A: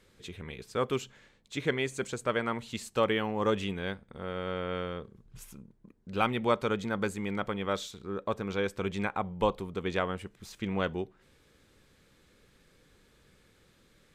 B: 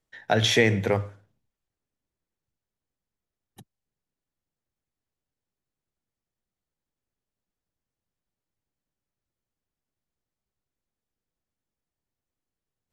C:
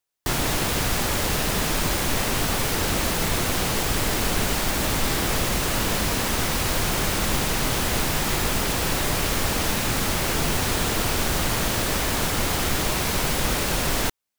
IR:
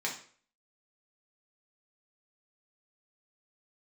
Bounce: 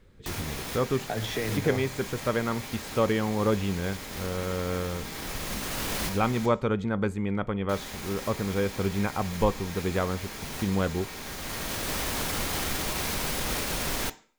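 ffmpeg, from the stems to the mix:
-filter_complex "[0:a]lowshelf=f=140:g=11.5,volume=1.19,asplit=3[s0][s1][s2];[s1]volume=0.075[s3];[1:a]alimiter=limit=0.15:level=0:latency=1:release=238,adelay=800,volume=0.75[s4];[2:a]highshelf=f=2700:g=11.5,alimiter=limit=0.335:level=0:latency=1:release=26,volume=0.473,asplit=3[s5][s6][s7];[s5]atrim=end=6.46,asetpts=PTS-STARTPTS,afade=t=out:st=6.456:d=0.004:c=hsin[s8];[s6]atrim=start=6.46:end=7.69,asetpts=PTS-STARTPTS,volume=0[s9];[s7]atrim=start=7.69,asetpts=PTS-STARTPTS,afade=t=in:d=0.004:c=hsin[s10];[s8][s9][s10]concat=n=3:v=0:a=1,asplit=2[s11][s12];[s12]volume=0.2[s13];[s2]apad=whole_len=634353[s14];[s11][s14]sidechaincompress=threshold=0.01:ratio=8:attack=26:release=718[s15];[3:a]atrim=start_sample=2205[s16];[s3][s13]amix=inputs=2:normalize=0[s17];[s17][s16]afir=irnorm=-1:irlink=0[s18];[s0][s4][s15][s18]amix=inputs=4:normalize=0,highshelf=f=2500:g=-9"

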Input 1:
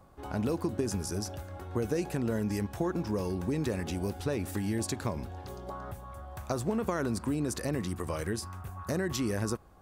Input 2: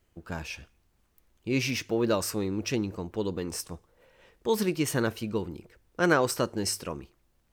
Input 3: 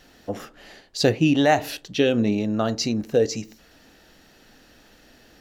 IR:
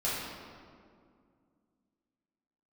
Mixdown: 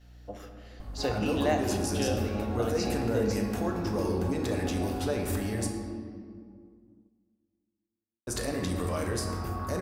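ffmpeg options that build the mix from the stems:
-filter_complex "[0:a]aeval=exprs='val(0)+0.00631*(sin(2*PI*50*n/s)+sin(2*PI*2*50*n/s)/2+sin(2*PI*3*50*n/s)/3+sin(2*PI*4*50*n/s)/4+sin(2*PI*5*50*n/s)/5)':c=same,alimiter=level_in=1.5:limit=0.0631:level=0:latency=1:release=47,volume=0.668,adelay=800,volume=1.26,asplit=3[s0][s1][s2];[s0]atrim=end=5.67,asetpts=PTS-STARTPTS,afade=t=out:st=5.666:d=0.004:c=hsin[s3];[s1]atrim=start=5.67:end=8.27,asetpts=PTS-STARTPTS,volume=0[s4];[s2]atrim=start=8.27,asetpts=PTS-STARTPTS,afade=t=in:d=0.004:c=hsin[s5];[s3][s4][s5]concat=n=3:v=0:a=1,asplit=2[s6][s7];[s7]volume=0.531[s8];[2:a]aeval=exprs='val(0)+0.01*(sin(2*PI*60*n/s)+sin(2*PI*2*60*n/s)/2+sin(2*PI*3*60*n/s)/3+sin(2*PI*4*60*n/s)/4+sin(2*PI*5*60*n/s)/5)':c=same,volume=0.211,asplit=2[s9][s10];[s10]volume=0.335[s11];[3:a]atrim=start_sample=2205[s12];[s8][s11]amix=inputs=2:normalize=0[s13];[s13][s12]afir=irnorm=-1:irlink=0[s14];[s6][s9][s14]amix=inputs=3:normalize=0,agate=range=0.447:threshold=0.00141:ratio=16:detection=peak,equalizer=f=150:w=3.2:g=-12"

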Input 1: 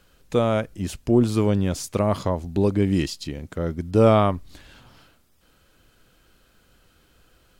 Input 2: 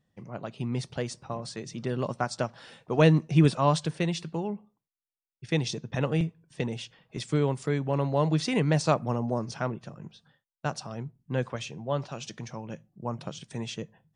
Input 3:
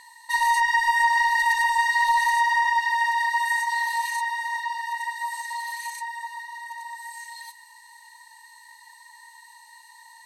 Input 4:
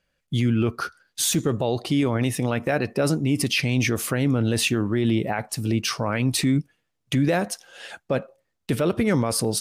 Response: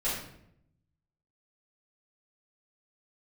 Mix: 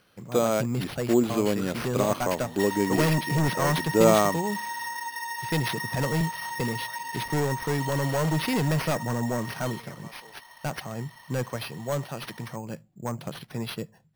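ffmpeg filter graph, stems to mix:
-filter_complex "[0:a]highpass=220,volume=0.794[s0];[1:a]asoftclip=type=hard:threshold=0.0631,volume=1.33[s1];[2:a]adelay=2300,volume=0.891[s2];[3:a]acompressor=threshold=0.0224:ratio=2.5,adelay=800,volume=0.355[s3];[s2][s3]amix=inputs=2:normalize=0,highpass=700,acompressor=threshold=0.0282:ratio=10,volume=1[s4];[s0][s1][s4]amix=inputs=3:normalize=0,acrusher=samples=6:mix=1:aa=0.000001"

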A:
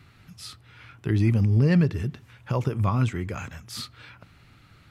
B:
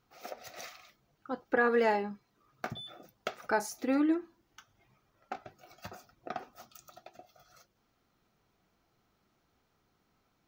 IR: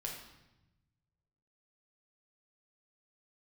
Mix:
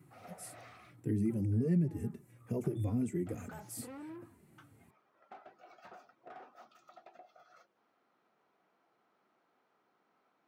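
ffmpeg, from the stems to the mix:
-filter_complex "[0:a]firequalizer=gain_entry='entry(340,0);entry(1200,-29);entry(1900,-12);entry(3500,-20);entry(8300,10)':delay=0.05:min_phase=1,asplit=2[s0][s1];[s1]adelay=3.1,afreqshift=-2.2[s2];[s0][s2]amix=inputs=2:normalize=1,volume=1.33,asplit=2[s3][s4];[1:a]alimiter=level_in=1.33:limit=0.0631:level=0:latency=1:release=165,volume=0.75,asplit=2[s5][s6];[s6]highpass=f=720:p=1,volume=22.4,asoftclip=type=tanh:threshold=0.0473[s7];[s5][s7]amix=inputs=2:normalize=0,lowpass=f=1800:p=1,volume=0.501,volume=0.188[s8];[s4]apad=whole_len=461740[s9];[s8][s9]sidechaincompress=threshold=0.0316:ratio=4:attack=16:release=595[s10];[s3][s10]amix=inputs=2:normalize=0,highpass=190,highshelf=f=3000:g=-10.5,acompressor=threshold=0.0316:ratio=2.5"

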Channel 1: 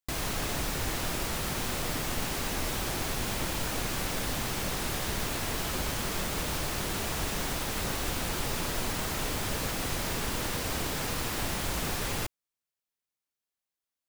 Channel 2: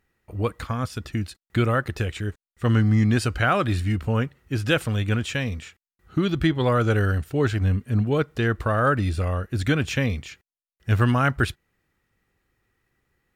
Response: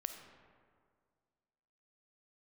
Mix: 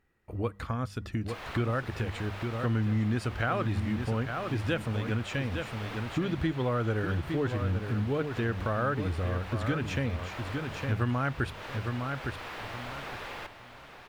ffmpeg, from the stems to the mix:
-filter_complex "[0:a]acrossover=split=450 3500:gain=0.224 1 0.0794[s0][s1][s2];[s0][s1][s2]amix=inputs=3:normalize=0,adelay=1200,volume=0.708,asplit=2[s3][s4];[s4]volume=0.335[s5];[1:a]highshelf=f=3200:g=-8.5,bandreject=f=50:t=h:w=6,bandreject=f=100:t=h:w=6,bandreject=f=150:t=h:w=6,bandreject=f=200:t=h:w=6,volume=1,asplit=2[s6][s7];[s7]volume=0.355[s8];[s5][s8]amix=inputs=2:normalize=0,aecho=0:1:860|1720|2580:1|0.18|0.0324[s9];[s3][s6][s9]amix=inputs=3:normalize=0,acompressor=threshold=0.0251:ratio=2"

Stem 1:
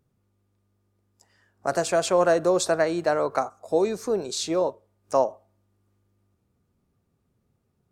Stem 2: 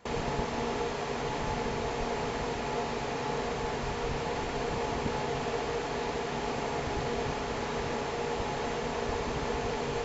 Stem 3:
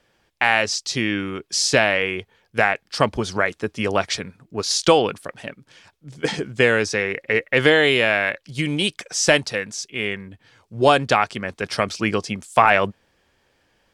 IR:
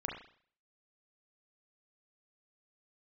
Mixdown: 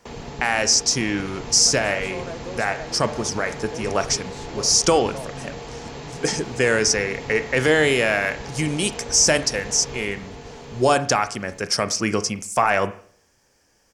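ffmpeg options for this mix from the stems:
-filter_complex "[0:a]volume=0.178,asplit=2[s0][s1];[1:a]acrossover=split=350|3000[s2][s3][s4];[s3]acompressor=threshold=0.0126:ratio=6[s5];[s2][s5][s4]amix=inputs=3:normalize=0,volume=0.944,asplit=2[s6][s7];[s7]volume=0.668[s8];[2:a]highshelf=f=4600:t=q:w=3:g=7.5,alimiter=limit=0.501:level=0:latency=1:release=21,volume=0.708,asplit=2[s9][s10];[s10]volume=0.355[s11];[s1]apad=whole_len=614597[s12];[s9][s12]sidechaincompress=threshold=0.0112:ratio=8:attack=31:release=257[s13];[3:a]atrim=start_sample=2205[s14];[s11][s14]afir=irnorm=-1:irlink=0[s15];[s8]aecho=0:1:803|1606|2409|3212|4015:1|0.34|0.116|0.0393|0.0134[s16];[s0][s6][s13][s15][s16]amix=inputs=5:normalize=0"

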